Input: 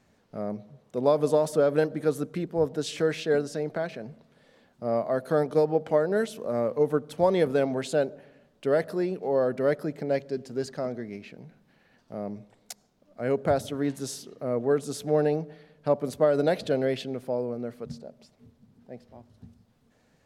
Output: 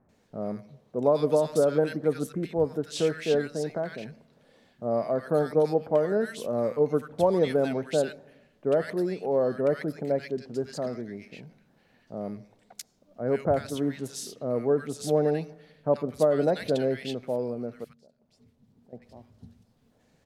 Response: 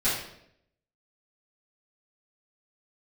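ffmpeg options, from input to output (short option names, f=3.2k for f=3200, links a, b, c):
-filter_complex "[0:a]asettb=1/sr,asplit=3[a][b][c];[a]atrim=end=17.844[d];[b]atrim=start=17.84:end=18.93,asetpts=PTS-STARTPTS,afade=t=in:d=0.004:c=qsin,afade=t=out:st=1.086:d=0.004:c=qsin,acompressor=threshold=-58dB:ratio=4[e];[c]atrim=start=18.926[f];[d][e]acrossfade=d=0.004:c1=hsin:c2=qsin[g];[g][f]acrossfade=d=0.004:c1=qsin:c2=hsin,acrossover=split=1400[h][i];[i]adelay=90[j];[h][j]amix=inputs=2:normalize=0"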